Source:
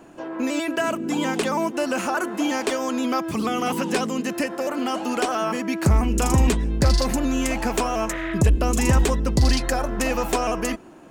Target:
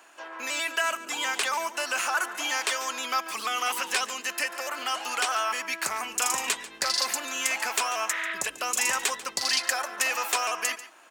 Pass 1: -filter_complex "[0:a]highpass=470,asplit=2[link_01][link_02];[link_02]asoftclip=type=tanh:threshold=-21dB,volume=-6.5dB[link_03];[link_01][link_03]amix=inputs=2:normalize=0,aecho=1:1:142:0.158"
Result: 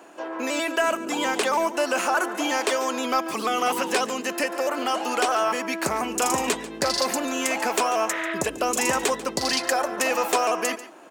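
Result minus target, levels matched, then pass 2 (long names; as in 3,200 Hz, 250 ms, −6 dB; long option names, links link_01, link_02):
500 Hz band +9.5 dB
-filter_complex "[0:a]highpass=1300,asplit=2[link_01][link_02];[link_02]asoftclip=type=tanh:threshold=-21dB,volume=-6.5dB[link_03];[link_01][link_03]amix=inputs=2:normalize=0,aecho=1:1:142:0.158"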